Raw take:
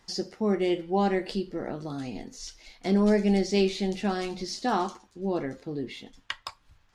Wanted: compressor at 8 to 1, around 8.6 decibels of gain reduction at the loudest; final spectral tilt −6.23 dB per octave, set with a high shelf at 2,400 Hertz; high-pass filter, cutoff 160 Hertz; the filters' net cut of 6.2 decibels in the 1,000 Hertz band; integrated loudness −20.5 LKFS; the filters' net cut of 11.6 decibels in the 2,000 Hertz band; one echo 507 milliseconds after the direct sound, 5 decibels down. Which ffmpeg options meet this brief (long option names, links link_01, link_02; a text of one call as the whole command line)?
ffmpeg -i in.wav -af "highpass=160,equalizer=frequency=1000:width_type=o:gain=-6,equalizer=frequency=2000:width_type=o:gain=-9,highshelf=frequency=2400:gain=-7.5,acompressor=threshold=-29dB:ratio=8,aecho=1:1:507:0.562,volume=14.5dB" out.wav